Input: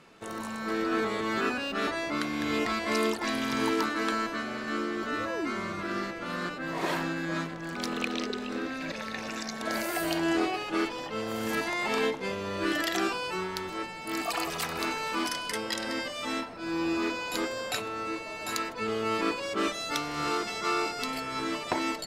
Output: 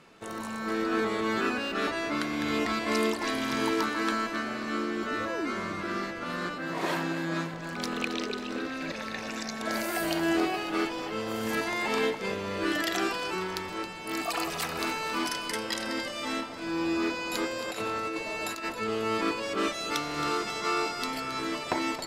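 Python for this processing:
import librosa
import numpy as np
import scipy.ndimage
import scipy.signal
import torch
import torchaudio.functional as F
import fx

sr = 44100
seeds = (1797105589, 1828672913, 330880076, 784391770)

y = fx.highpass(x, sr, hz=87.0, slope=12, at=(6.6, 7.54))
y = fx.over_compress(y, sr, threshold_db=-35.0, ratio=-0.5, at=(17.67, 18.71), fade=0.02)
y = fx.echo_feedback(y, sr, ms=271, feedback_pct=52, wet_db=-12.5)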